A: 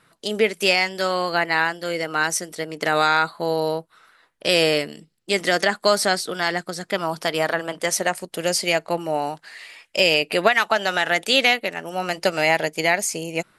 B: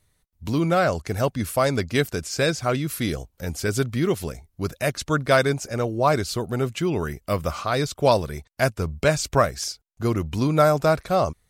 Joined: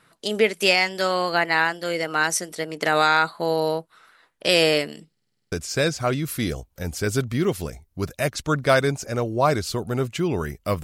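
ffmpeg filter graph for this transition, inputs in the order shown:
ffmpeg -i cue0.wav -i cue1.wav -filter_complex "[0:a]apad=whole_dur=10.83,atrim=end=10.83,asplit=8[link_01][link_02][link_03][link_04][link_05][link_06][link_07][link_08];[link_01]atrim=end=5.172[link_09];[link_02]atrim=start=5.118:end=5.172[link_10];[link_03]atrim=start=5.118:end=5.172[link_11];[link_04]atrim=start=5.118:end=5.172[link_12];[link_05]atrim=start=5.118:end=5.172[link_13];[link_06]atrim=start=5.118:end=5.172[link_14];[link_07]atrim=start=5.118:end=5.172[link_15];[link_08]atrim=start=5.118:end=5.172[link_16];[1:a]atrim=start=2.138:end=7.45[link_17];[link_09][link_10]acrossfade=duration=0.004:curve1=hsin:curve2=hsin[link_18];[link_18][link_11]acrossfade=duration=0.004:curve1=hsin:curve2=hsin[link_19];[link_19][link_12]acrossfade=duration=0.004:curve1=hsin:curve2=hsin[link_20];[link_20][link_13]acrossfade=duration=0.004:curve1=hsin:curve2=hsin[link_21];[link_21][link_14]acrossfade=duration=0.004:curve1=hsin:curve2=hsin[link_22];[link_22][link_15]acrossfade=duration=0.004:curve1=hsin:curve2=hsin[link_23];[link_23][link_16]acrossfade=duration=0.004:curve1=hsin:curve2=hsin[link_24];[link_24][link_17]acrossfade=duration=0.004:curve1=hsin:curve2=hsin" out.wav

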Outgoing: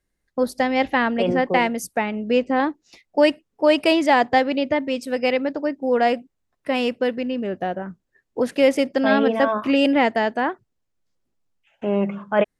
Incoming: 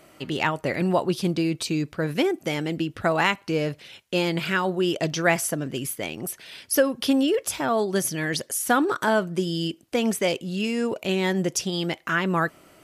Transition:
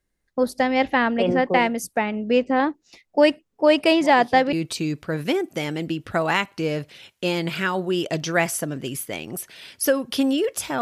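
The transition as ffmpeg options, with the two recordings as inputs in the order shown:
ffmpeg -i cue0.wav -i cue1.wav -filter_complex "[1:a]asplit=2[link_01][link_02];[0:a]apad=whole_dur=10.81,atrim=end=10.81,atrim=end=4.532[link_03];[link_02]atrim=start=1.428:end=7.71[link_04];[link_01]atrim=start=0.91:end=1.43,asetpts=PTS-STARTPTS,volume=-15.5dB,afade=type=in:duration=0.004:curve=hsin,afade=type=out:start_time=0.516:duration=0.004:curve=hsin,adelay=176841S[link_05];[link_03][link_04]acrossfade=duration=0.004:curve1=hsin:curve2=hsin[link_06];[link_06][link_05]amix=inputs=2:normalize=0" out.wav

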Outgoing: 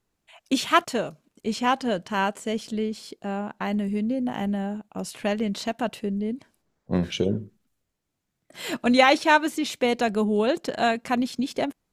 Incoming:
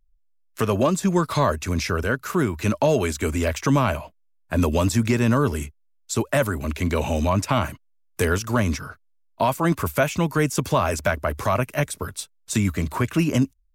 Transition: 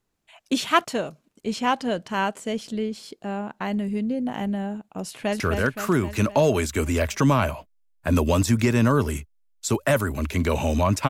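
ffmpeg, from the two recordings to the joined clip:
ffmpeg -i cue0.wav -i cue1.wav -filter_complex "[0:a]apad=whole_dur=11.09,atrim=end=11.09,atrim=end=5.402[link_01];[1:a]atrim=start=1.858:end=7.55[link_02];[link_01][link_02]acrossfade=duration=0.004:curve1=hsin:curve2=hsin,asplit=2[link_03][link_04];[link_04]afade=type=in:start_time=5.06:duration=0.01,afade=type=out:start_time=5.4:duration=0.01,aecho=0:1:260|520|780|1040|1300|1560|1820|2080:0.562341|0.337405|0.202443|0.121466|0.0728794|0.0437277|0.0262366|0.015742[link_05];[link_03][link_05]amix=inputs=2:normalize=0" out.wav

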